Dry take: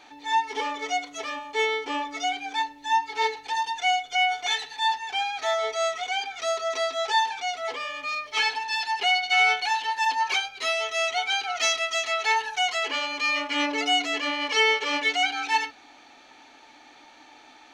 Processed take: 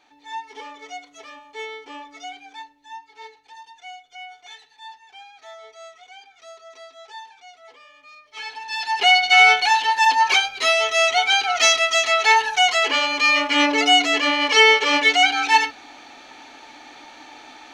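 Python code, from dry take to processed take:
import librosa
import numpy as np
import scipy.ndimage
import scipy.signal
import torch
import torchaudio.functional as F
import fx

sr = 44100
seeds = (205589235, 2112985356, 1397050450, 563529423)

y = fx.gain(x, sr, db=fx.line((2.38, -8.5), (3.03, -16.0), (8.23, -16.0), (8.62, -3.5), (9.07, 8.0)))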